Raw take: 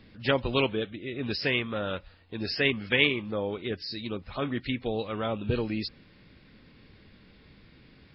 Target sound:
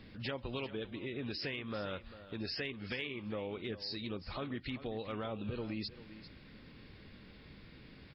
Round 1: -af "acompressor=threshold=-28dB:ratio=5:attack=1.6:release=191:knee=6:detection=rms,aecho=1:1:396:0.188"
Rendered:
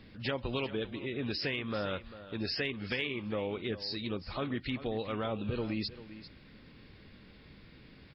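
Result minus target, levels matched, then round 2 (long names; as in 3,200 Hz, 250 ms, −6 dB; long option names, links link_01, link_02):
downward compressor: peak gain reduction −5.5 dB
-af "acompressor=threshold=-35dB:ratio=5:attack=1.6:release=191:knee=6:detection=rms,aecho=1:1:396:0.188"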